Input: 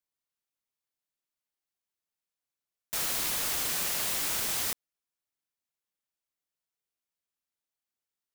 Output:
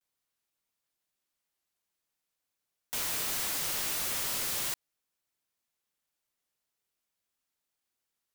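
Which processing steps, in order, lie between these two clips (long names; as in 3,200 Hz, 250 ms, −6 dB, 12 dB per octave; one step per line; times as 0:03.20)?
pitch vibrato 0.43 Hz 45 cents
wrap-around overflow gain 33.5 dB
level +5.5 dB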